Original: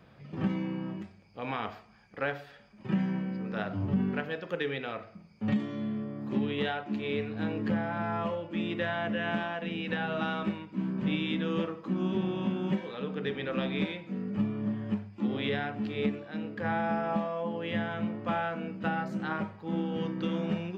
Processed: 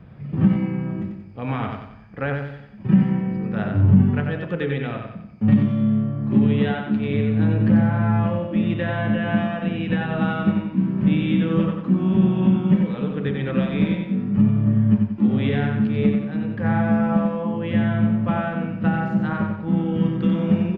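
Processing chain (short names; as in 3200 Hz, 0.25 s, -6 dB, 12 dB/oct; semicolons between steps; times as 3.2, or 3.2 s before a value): tone controls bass +13 dB, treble -13 dB; on a send: feedback echo 92 ms, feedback 42%, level -5 dB; on the sum: gain +4 dB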